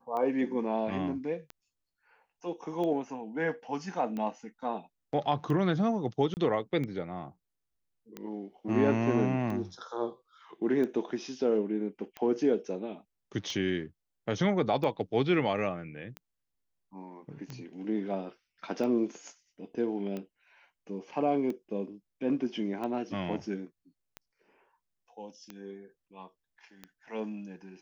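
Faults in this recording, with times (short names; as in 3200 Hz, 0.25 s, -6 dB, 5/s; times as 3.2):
tick 45 rpm -25 dBFS
6.34–6.37 gap 29 ms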